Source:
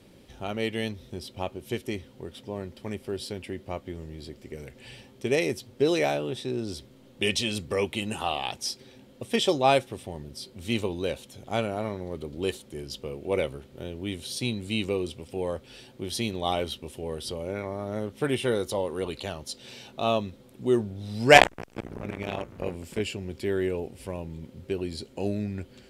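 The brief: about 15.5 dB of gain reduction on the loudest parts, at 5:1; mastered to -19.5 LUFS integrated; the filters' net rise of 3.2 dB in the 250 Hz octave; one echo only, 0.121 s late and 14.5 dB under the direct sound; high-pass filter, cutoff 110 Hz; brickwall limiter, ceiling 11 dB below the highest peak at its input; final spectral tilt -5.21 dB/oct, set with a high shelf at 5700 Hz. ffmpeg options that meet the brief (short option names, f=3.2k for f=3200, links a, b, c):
-af "highpass=110,equalizer=f=250:t=o:g=4.5,highshelf=f=5.7k:g=-6,acompressor=threshold=-26dB:ratio=5,alimiter=level_in=1dB:limit=-24dB:level=0:latency=1,volume=-1dB,aecho=1:1:121:0.188,volume=17.5dB"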